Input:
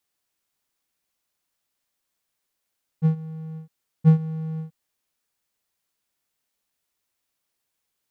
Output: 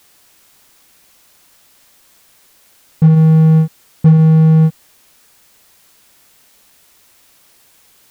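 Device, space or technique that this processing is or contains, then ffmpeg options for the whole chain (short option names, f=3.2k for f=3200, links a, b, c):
loud club master: -af "acompressor=threshold=-20dB:ratio=3,asoftclip=type=hard:threshold=-19dB,alimiter=level_in=31dB:limit=-1dB:release=50:level=0:latency=1,volume=-2dB"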